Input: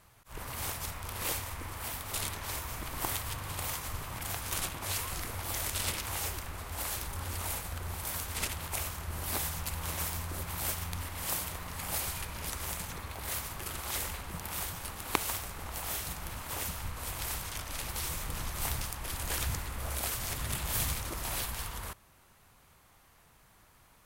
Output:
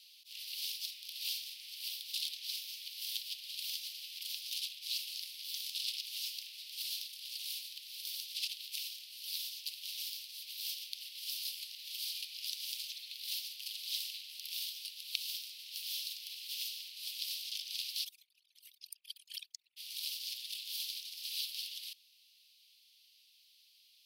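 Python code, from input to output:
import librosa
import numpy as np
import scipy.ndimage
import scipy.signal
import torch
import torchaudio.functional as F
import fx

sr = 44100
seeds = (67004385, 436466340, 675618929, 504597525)

y = fx.envelope_sharpen(x, sr, power=3.0, at=(18.03, 19.76), fade=0.02)
y = fx.edit(y, sr, fx.reverse_span(start_s=11.38, length_s=0.67), tone=tone)
y = fx.rider(y, sr, range_db=10, speed_s=0.5)
y = scipy.signal.sosfilt(scipy.signal.butter(8, 2800.0, 'highpass', fs=sr, output='sos'), y)
y = fx.high_shelf_res(y, sr, hz=5900.0, db=-7.5, q=3.0)
y = F.gain(torch.from_numpy(y), 1.0).numpy()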